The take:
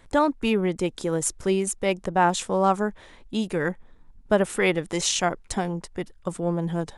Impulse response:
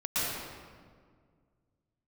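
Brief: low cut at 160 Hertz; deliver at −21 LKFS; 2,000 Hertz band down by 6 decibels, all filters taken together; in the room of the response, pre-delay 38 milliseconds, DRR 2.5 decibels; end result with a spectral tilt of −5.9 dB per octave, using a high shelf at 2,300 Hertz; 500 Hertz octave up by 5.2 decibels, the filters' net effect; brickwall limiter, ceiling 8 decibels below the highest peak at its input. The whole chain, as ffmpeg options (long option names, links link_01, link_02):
-filter_complex "[0:a]highpass=160,equalizer=frequency=500:width_type=o:gain=7.5,equalizer=frequency=2000:width_type=o:gain=-4.5,highshelf=frequency=2300:gain=-7.5,alimiter=limit=-12.5dB:level=0:latency=1,asplit=2[link_01][link_02];[1:a]atrim=start_sample=2205,adelay=38[link_03];[link_02][link_03]afir=irnorm=-1:irlink=0,volume=-12dB[link_04];[link_01][link_04]amix=inputs=2:normalize=0,volume=2dB"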